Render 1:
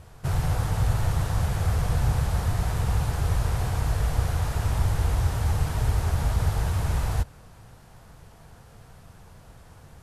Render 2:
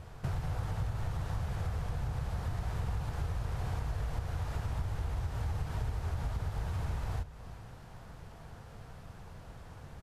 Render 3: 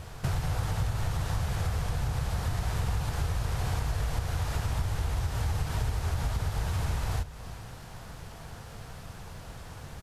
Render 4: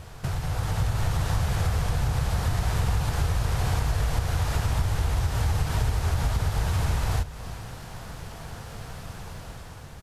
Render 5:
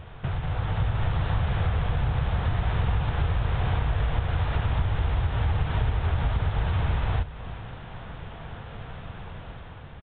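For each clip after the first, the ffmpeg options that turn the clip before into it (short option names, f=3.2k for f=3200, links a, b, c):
-af "equalizer=f=11k:w=0.55:g=-8.5,acompressor=threshold=-32dB:ratio=6,aecho=1:1:341:0.168"
-af "highshelf=f=2.5k:g=8.5,volume=5dB"
-af "dynaudnorm=f=190:g=7:m=5dB"
-af "aresample=8000,aresample=44100"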